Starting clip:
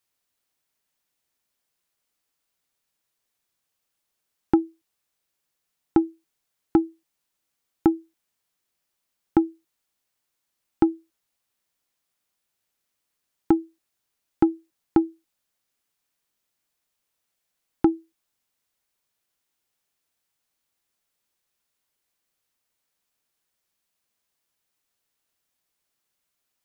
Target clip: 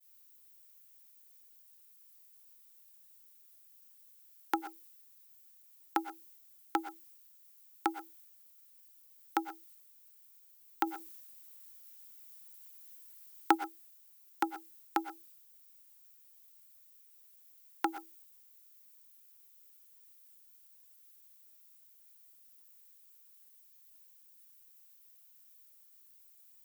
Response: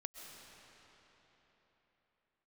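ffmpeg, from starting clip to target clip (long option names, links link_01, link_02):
-filter_complex "[0:a]aemphasis=mode=production:type=bsi,agate=range=-33dB:threshold=-57dB:ratio=3:detection=peak,highpass=1000,asplit=3[link_01][link_02][link_03];[link_01]afade=type=out:start_time=10.86:duration=0.02[link_04];[link_02]acontrast=50,afade=type=in:start_time=10.86:duration=0.02,afade=type=out:start_time=13.54:duration=0.02[link_05];[link_03]afade=type=in:start_time=13.54:duration=0.02[link_06];[link_04][link_05][link_06]amix=inputs=3:normalize=0[link_07];[1:a]atrim=start_sample=2205,atrim=end_sample=6615,asetrate=48510,aresample=44100[link_08];[link_07][link_08]afir=irnorm=-1:irlink=0,volume=9.5dB"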